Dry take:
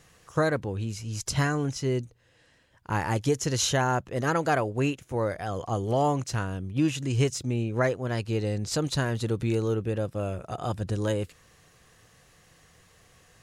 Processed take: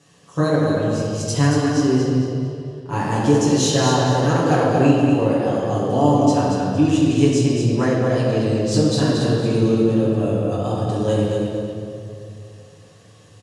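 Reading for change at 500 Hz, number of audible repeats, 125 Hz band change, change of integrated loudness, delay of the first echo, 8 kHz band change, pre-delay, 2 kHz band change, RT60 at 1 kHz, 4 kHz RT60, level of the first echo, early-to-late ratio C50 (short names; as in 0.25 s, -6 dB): +10.0 dB, 1, +8.5 dB, +9.5 dB, 0.229 s, +5.5 dB, 7 ms, +3.5 dB, 2.2 s, 1.8 s, -4.5 dB, -2.0 dB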